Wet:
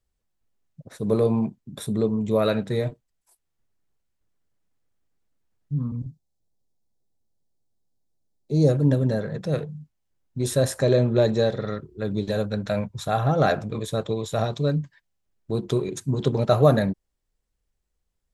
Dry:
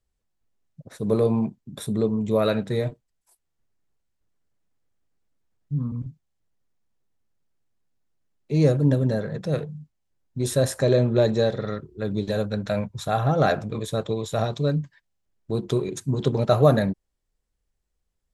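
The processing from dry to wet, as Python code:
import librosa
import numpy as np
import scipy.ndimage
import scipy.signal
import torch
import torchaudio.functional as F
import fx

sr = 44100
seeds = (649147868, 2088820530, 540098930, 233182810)

y = fx.band_shelf(x, sr, hz=1800.0, db=-14.5, octaves=1.7, at=(5.95, 8.68), fade=0.02)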